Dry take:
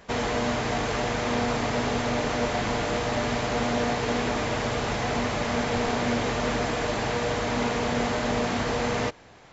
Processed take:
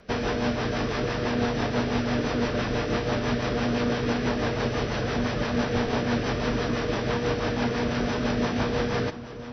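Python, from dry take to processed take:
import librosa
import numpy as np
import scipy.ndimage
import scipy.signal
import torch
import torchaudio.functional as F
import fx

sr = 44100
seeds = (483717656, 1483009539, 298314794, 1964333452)

y = fx.formant_shift(x, sr, semitones=-4)
y = fx.echo_alternate(y, sr, ms=633, hz=1300.0, feedback_pct=71, wet_db=-13)
y = fx.rotary(y, sr, hz=6.0)
y = y * librosa.db_to_amplitude(2.0)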